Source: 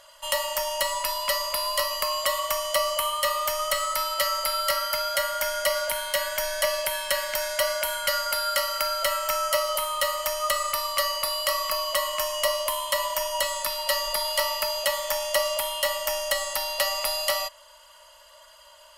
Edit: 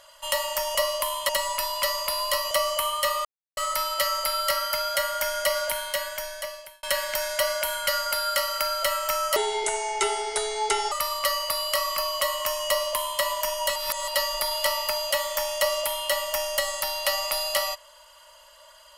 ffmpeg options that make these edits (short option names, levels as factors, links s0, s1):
-filter_complex "[0:a]asplit=11[s0][s1][s2][s3][s4][s5][s6][s7][s8][s9][s10];[s0]atrim=end=0.752[s11];[s1]atrim=start=12.408:end=12.952[s12];[s2]atrim=start=0.748:end=1.972[s13];[s3]atrim=start=2.708:end=3.45,asetpts=PTS-STARTPTS,afade=t=out:st=0.738:d=0.004:c=hsin[s14];[s4]atrim=start=3.45:end=3.77,asetpts=PTS-STARTPTS,volume=0[s15];[s5]atrim=start=3.77:end=7.03,asetpts=PTS-STARTPTS,afade=t=in:d=0.004:c=hsin,afade=t=out:st=2.12:d=1.14[s16];[s6]atrim=start=7.03:end=9.564,asetpts=PTS-STARTPTS,afade=t=in:d=0.004:c=hsin[s17];[s7]atrim=start=9.56:end=10.65,asetpts=PTS-STARTPTS,asetrate=30870,aresample=44100[s18];[s8]atrim=start=10.646:end=13.492[s19];[s9]atrim=start=13.488:end=13.812,asetpts=PTS-STARTPTS,areverse[s20];[s10]atrim=start=13.808[s21];[s11][s12]acrossfade=d=0.004:c1=hsin:c2=hsin[s22];[s22][s13]acrossfade=d=0.004:c1=hsin:c2=hsin[s23];[s14][s15][s16][s17]concat=n=4:v=0:a=1[s24];[s23][s24]acrossfade=d=0.004:c1=hsin:c2=hsin[s25];[s25][s18]acrossfade=d=0.004:c1=hsin:c2=hsin[s26];[s26][s19]acrossfade=d=0.004:c1=hsin:c2=hsin[s27];[s27][s20]acrossfade=d=0.004:c1=hsin:c2=hsin[s28];[s28][s21]acrossfade=d=0.004:c1=hsin:c2=hsin"